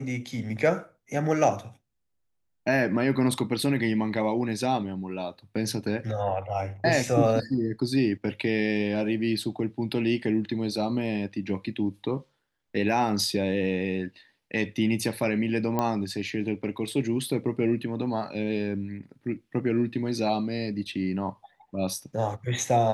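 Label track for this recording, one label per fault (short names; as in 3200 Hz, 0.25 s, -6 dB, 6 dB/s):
15.790000	15.790000	pop -13 dBFS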